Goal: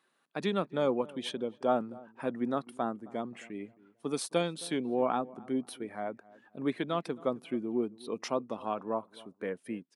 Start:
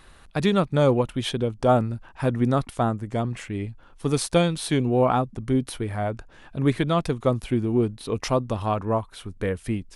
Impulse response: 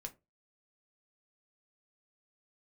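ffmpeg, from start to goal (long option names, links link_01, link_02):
-filter_complex "[0:a]highpass=frequency=200:width=0.5412,highpass=frequency=200:width=1.3066,afftdn=noise_reduction=12:noise_floor=-44,asplit=2[link_01][link_02];[link_02]adelay=266,lowpass=frequency=1200:poles=1,volume=-20.5dB,asplit=2[link_03][link_04];[link_04]adelay=266,lowpass=frequency=1200:poles=1,volume=0.38,asplit=2[link_05][link_06];[link_06]adelay=266,lowpass=frequency=1200:poles=1,volume=0.38[link_07];[link_03][link_05][link_07]amix=inputs=3:normalize=0[link_08];[link_01][link_08]amix=inputs=2:normalize=0,volume=-8.5dB"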